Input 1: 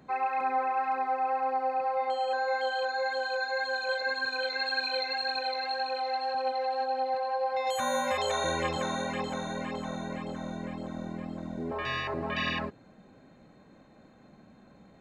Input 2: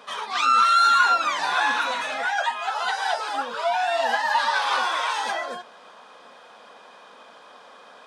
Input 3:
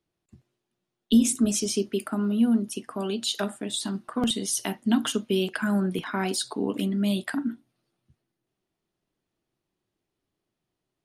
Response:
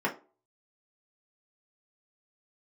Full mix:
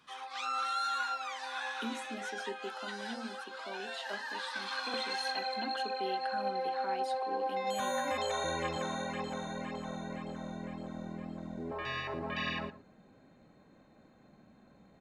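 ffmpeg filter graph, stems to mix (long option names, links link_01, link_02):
-filter_complex "[0:a]volume=-5dB,afade=type=in:start_time=4.53:duration=0.63:silence=0.251189,asplit=2[link_01][link_02];[link_02]volume=-15.5dB[link_03];[1:a]highpass=1300,volume=-14.5dB[link_04];[2:a]acrossover=split=290 3700:gain=0.0891 1 0.178[link_05][link_06][link_07];[link_05][link_06][link_07]amix=inputs=3:normalize=0,bandreject=frequency=60:width_type=h:width=6,bandreject=frequency=120:width_type=h:width=6,bandreject=frequency=180:width_type=h:width=6,bandreject=frequency=240:width_type=h:width=6,bandreject=frequency=300:width_type=h:width=6,bandreject=frequency=360:width_type=h:width=6,bandreject=frequency=420:width_type=h:width=6,adelay=700,volume=-12dB[link_08];[link_03]aecho=0:1:116:1[link_09];[link_01][link_04][link_08][link_09]amix=inputs=4:normalize=0"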